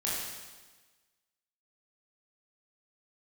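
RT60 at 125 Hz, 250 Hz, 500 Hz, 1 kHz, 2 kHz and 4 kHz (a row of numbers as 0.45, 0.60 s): 1.3, 1.4, 1.3, 1.3, 1.3, 1.3 s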